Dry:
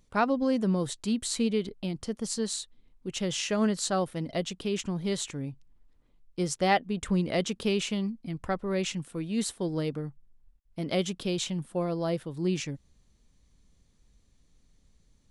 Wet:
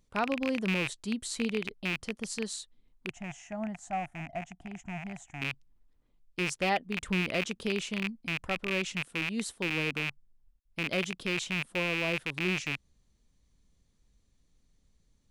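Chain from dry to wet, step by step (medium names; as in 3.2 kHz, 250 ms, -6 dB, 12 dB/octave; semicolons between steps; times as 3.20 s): rattle on loud lows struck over -38 dBFS, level -15 dBFS; 3.10–5.42 s: FFT filter 130 Hz 0 dB, 320 Hz -9 dB, 480 Hz -27 dB, 710 Hz +9 dB, 1.1 kHz -11 dB, 2 kHz -7 dB, 4.3 kHz -28 dB, 6.7 kHz -9 dB, 11 kHz -20 dB; trim -5 dB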